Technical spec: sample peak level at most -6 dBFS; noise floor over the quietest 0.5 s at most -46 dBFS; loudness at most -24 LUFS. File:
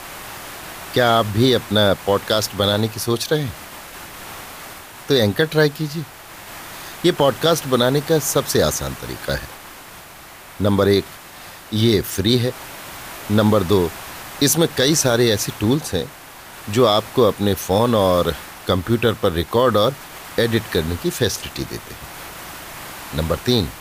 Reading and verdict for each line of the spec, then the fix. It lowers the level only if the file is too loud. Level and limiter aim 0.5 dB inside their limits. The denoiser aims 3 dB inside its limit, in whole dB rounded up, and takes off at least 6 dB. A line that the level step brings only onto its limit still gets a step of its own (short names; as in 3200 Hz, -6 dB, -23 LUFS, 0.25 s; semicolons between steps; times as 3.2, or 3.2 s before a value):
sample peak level -4.0 dBFS: fail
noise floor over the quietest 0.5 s -40 dBFS: fail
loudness -18.5 LUFS: fail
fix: denoiser 6 dB, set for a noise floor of -40 dBFS; gain -6 dB